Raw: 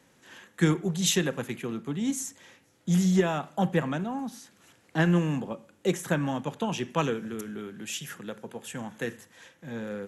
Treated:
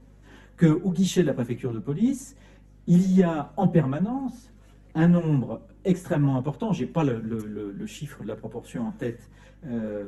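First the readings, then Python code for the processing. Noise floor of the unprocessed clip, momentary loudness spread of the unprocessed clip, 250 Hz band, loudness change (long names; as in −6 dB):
−63 dBFS, 15 LU, +5.0 dB, +4.0 dB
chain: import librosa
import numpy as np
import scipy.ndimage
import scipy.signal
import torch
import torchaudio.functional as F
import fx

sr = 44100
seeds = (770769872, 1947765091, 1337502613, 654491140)

y = fx.tilt_shelf(x, sr, db=7.5, hz=920.0)
y = fx.chorus_voices(y, sr, voices=6, hz=0.25, base_ms=12, depth_ms=5.0, mix_pct=55)
y = fx.add_hum(y, sr, base_hz=50, snr_db=27)
y = y * 10.0 ** (2.5 / 20.0)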